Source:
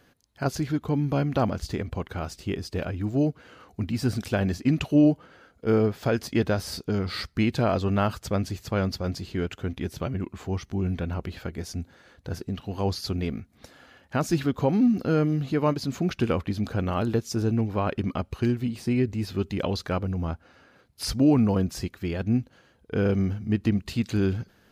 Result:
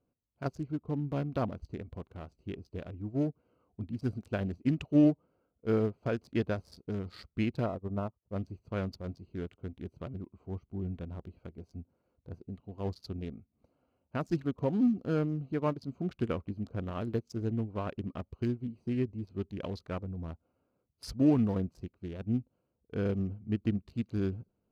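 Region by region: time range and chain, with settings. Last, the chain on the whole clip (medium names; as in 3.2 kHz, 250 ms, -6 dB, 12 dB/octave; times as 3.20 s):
7.66–8.36 s: Savitzky-Golay filter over 65 samples + upward expansion 2.5:1, over -37 dBFS
whole clip: local Wiener filter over 25 samples; band-stop 810 Hz, Q 12; upward expansion 1.5:1, over -41 dBFS; trim -4 dB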